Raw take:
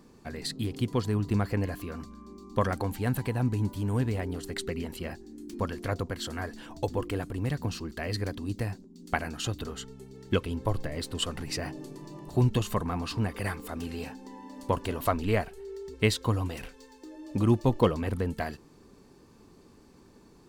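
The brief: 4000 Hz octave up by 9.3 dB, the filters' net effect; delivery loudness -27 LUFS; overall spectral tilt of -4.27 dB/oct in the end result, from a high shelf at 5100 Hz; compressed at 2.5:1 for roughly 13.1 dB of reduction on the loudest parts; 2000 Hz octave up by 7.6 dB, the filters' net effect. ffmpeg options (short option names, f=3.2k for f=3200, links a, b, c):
-af "equalizer=f=2k:t=o:g=6.5,equalizer=f=4k:t=o:g=6,highshelf=f=5.1k:g=8.5,acompressor=threshold=-37dB:ratio=2.5,volume=11dB"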